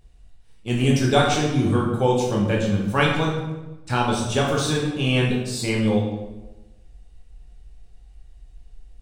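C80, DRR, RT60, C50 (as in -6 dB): 5.5 dB, -3.0 dB, 1.1 s, 2.5 dB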